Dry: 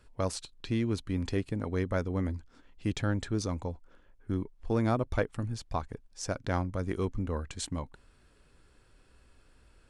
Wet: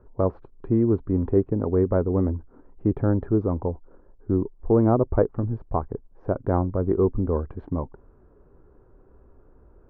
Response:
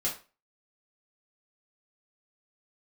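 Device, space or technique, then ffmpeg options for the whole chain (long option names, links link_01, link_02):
under water: -af "lowpass=frequency=1100:width=0.5412,lowpass=frequency=1100:width=1.3066,equalizer=frequency=390:width_type=o:width=0.53:gain=7,volume=7.5dB"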